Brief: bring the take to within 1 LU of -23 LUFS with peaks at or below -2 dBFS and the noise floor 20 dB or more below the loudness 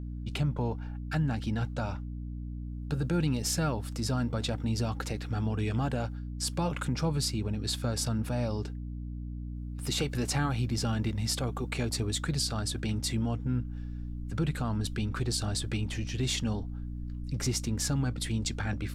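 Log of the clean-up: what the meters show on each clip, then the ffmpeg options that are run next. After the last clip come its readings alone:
hum 60 Hz; harmonics up to 300 Hz; hum level -35 dBFS; loudness -32.0 LUFS; peak -17.5 dBFS; loudness target -23.0 LUFS
-> -af "bandreject=f=60:t=h:w=6,bandreject=f=120:t=h:w=6,bandreject=f=180:t=h:w=6,bandreject=f=240:t=h:w=6,bandreject=f=300:t=h:w=6"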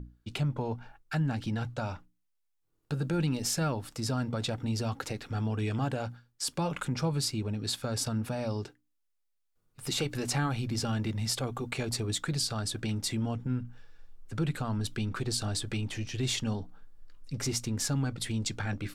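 hum none; loudness -32.5 LUFS; peak -17.5 dBFS; loudness target -23.0 LUFS
-> -af "volume=9.5dB"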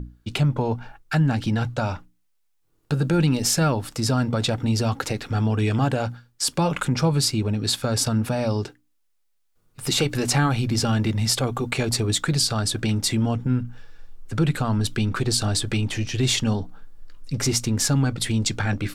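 loudness -23.0 LUFS; peak -8.0 dBFS; noise floor -67 dBFS

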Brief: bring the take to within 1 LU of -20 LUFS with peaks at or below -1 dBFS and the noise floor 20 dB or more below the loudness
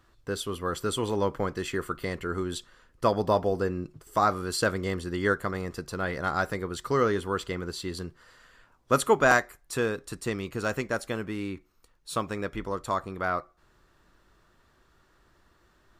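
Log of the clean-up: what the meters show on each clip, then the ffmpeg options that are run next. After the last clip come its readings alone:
loudness -29.0 LUFS; peak -7.0 dBFS; loudness target -20.0 LUFS
-> -af "volume=9dB,alimiter=limit=-1dB:level=0:latency=1"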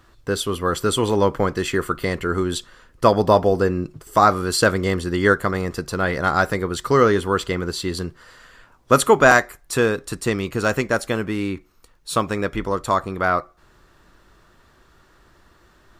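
loudness -20.5 LUFS; peak -1.0 dBFS; noise floor -56 dBFS

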